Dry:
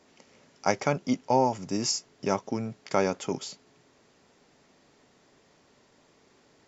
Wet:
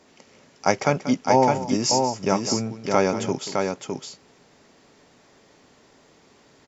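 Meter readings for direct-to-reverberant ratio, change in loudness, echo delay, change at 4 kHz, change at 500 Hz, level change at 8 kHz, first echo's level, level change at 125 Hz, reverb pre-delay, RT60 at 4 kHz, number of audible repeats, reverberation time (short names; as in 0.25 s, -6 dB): none, +6.0 dB, 0.186 s, +6.5 dB, +6.5 dB, n/a, -13.5 dB, +6.5 dB, none, none, 2, none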